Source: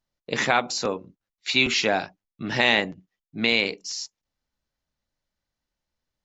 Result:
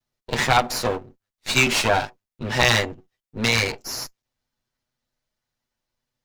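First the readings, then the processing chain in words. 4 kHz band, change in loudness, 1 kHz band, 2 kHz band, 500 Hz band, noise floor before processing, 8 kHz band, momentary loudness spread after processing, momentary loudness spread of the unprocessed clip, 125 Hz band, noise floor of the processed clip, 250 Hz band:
+1.0 dB, +2.0 dB, +4.5 dB, +1.5 dB, +2.0 dB, under -85 dBFS, no reading, 17 LU, 16 LU, +10.0 dB, under -85 dBFS, +0.5 dB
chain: comb filter that takes the minimum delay 8.1 ms; dynamic bell 870 Hz, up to +4 dB, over -37 dBFS, Q 1.5; trim +3.5 dB

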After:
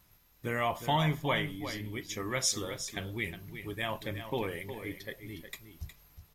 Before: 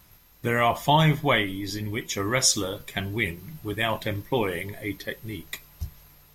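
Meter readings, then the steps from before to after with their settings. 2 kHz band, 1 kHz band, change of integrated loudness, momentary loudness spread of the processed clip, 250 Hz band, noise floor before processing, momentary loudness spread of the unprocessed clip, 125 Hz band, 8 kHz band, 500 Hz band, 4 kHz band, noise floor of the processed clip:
-8.5 dB, -8.5 dB, -8.5 dB, 16 LU, -8.5 dB, -56 dBFS, 16 LU, -8.5 dB, -8.5 dB, -8.5 dB, -8.5 dB, -65 dBFS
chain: delay 362 ms -10 dB; trim -9 dB

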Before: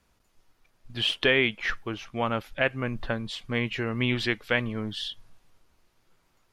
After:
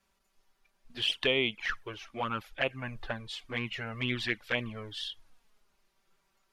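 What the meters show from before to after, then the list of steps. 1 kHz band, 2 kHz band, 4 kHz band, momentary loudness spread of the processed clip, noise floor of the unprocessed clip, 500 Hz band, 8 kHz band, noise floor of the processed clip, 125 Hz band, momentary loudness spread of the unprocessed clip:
-4.5 dB, -6.0 dB, -3.0 dB, 13 LU, -69 dBFS, -6.5 dB, -4.0 dB, -75 dBFS, -8.0 dB, 12 LU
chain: bass shelf 410 Hz -6.5 dB; touch-sensitive flanger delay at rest 5.2 ms, full sweep at -21.5 dBFS; trim -1 dB

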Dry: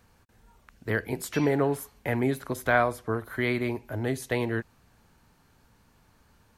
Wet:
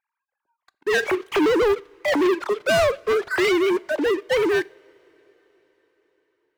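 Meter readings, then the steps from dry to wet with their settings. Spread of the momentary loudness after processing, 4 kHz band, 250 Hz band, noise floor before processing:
5 LU, +13.0 dB, +5.5 dB, -63 dBFS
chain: formants replaced by sine waves; waveshaping leveller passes 5; two-slope reverb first 0.4 s, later 5 s, from -21 dB, DRR 19.5 dB; trim -3.5 dB

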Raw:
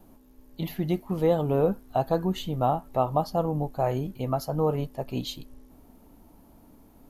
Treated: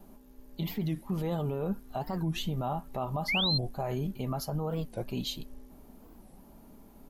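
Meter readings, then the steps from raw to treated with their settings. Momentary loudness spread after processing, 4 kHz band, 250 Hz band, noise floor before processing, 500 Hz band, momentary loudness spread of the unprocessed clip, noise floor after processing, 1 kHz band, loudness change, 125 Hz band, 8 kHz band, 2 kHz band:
9 LU, +7.5 dB, -4.5 dB, -56 dBFS, -10.5 dB, 8 LU, -55 dBFS, -9.0 dB, -5.0 dB, -3.5 dB, 0.0 dB, +8.0 dB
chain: comb 5 ms, depth 38%; dynamic bell 580 Hz, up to -5 dB, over -37 dBFS, Q 0.86; peak limiter -24 dBFS, peak gain reduction 9.5 dB; painted sound rise, 3.28–3.60 s, 2–4.7 kHz -29 dBFS; warped record 45 rpm, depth 250 cents

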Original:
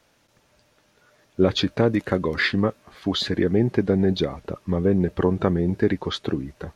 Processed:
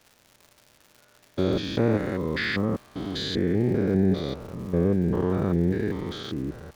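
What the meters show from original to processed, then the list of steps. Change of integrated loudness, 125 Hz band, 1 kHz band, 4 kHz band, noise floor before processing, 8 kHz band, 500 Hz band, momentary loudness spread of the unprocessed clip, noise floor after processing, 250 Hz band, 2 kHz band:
-3.0 dB, -1.5 dB, -5.0 dB, -5.5 dB, -63 dBFS, no reading, -4.0 dB, 7 LU, -61 dBFS, -2.5 dB, -4.5 dB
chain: spectrogram pixelated in time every 200 ms; crackle 170 per s -40 dBFS

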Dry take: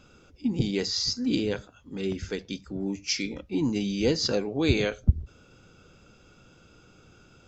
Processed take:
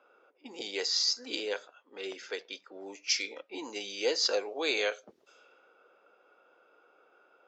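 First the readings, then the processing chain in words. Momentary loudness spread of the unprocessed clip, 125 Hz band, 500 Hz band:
10 LU, under -35 dB, -4.5 dB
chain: level-controlled noise filter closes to 1.3 kHz, open at -24 dBFS; high-pass 480 Hz 24 dB/octave

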